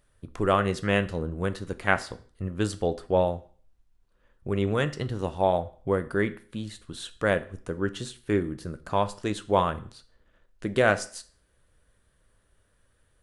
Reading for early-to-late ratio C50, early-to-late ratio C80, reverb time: 17.5 dB, 21.0 dB, 0.45 s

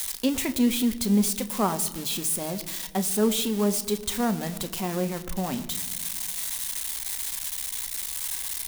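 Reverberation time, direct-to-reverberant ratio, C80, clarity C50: 1.7 s, 8.5 dB, 16.5 dB, 15.5 dB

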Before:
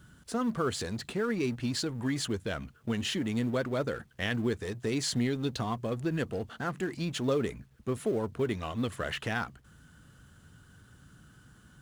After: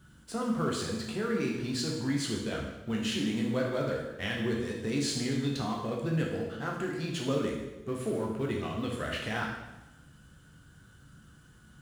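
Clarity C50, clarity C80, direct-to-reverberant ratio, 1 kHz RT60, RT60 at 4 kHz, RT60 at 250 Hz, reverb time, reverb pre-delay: 3.0 dB, 5.5 dB, -2.0 dB, 1.0 s, 0.95 s, 1.1 s, 1.0 s, 8 ms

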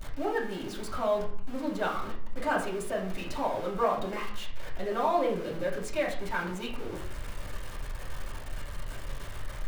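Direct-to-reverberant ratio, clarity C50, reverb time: -5.0 dB, 7.0 dB, 0.55 s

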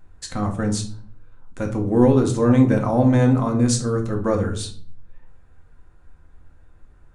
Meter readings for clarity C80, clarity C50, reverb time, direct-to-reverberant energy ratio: 15.0 dB, 10.5 dB, 0.50 s, 1.5 dB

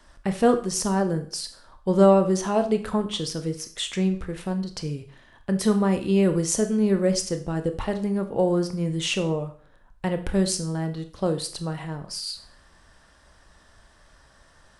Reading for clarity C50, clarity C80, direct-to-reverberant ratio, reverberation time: 12.0 dB, 16.0 dB, 7.5 dB, 0.45 s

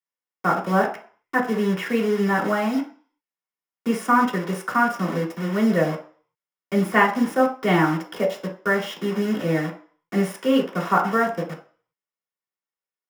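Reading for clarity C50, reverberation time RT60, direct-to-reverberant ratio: 9.5 dB, 0.45 s, -3.5 dB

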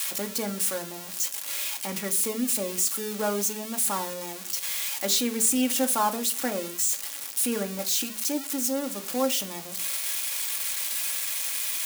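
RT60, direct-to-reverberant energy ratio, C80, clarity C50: no single decay rate, 3.5 dB, 21.0 dB, 16.0 dB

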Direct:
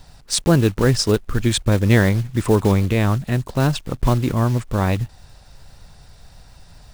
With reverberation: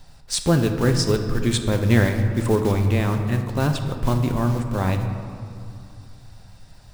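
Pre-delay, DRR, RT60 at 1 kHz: 4 ms, 5.0 dB, 2.5 s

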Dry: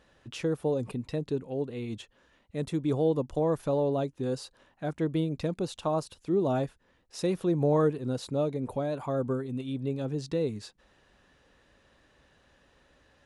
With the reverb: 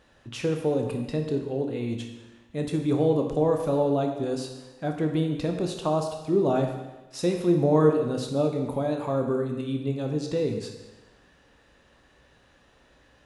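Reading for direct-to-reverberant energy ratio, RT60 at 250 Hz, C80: 3.0 dB, 1.1 s, 7.5 dB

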